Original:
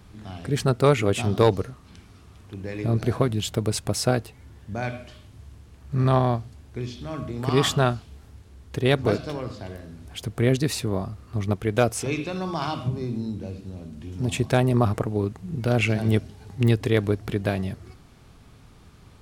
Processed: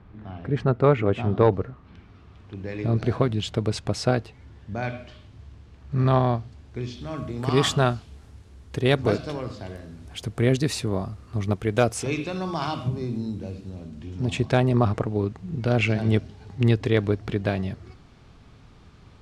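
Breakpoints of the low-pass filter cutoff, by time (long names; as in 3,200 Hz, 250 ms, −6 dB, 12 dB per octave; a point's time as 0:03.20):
0:01.64 1,900 Hz
0:02.72 5,000 Hz
0:06.39 5,000 Hz
0:07.27 9,800 Hz
0:13.54 9,800 Hz
0:14.20 5,700 Hz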